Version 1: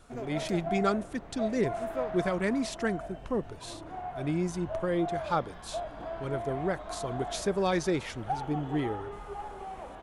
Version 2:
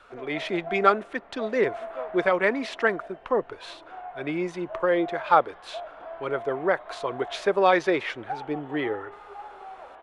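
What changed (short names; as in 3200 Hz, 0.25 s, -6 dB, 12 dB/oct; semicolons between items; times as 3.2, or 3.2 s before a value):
speech +11.5 dB; master: add three-band isolator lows -20 dB, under 410 Hz, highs -23 dB, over 3300 Hz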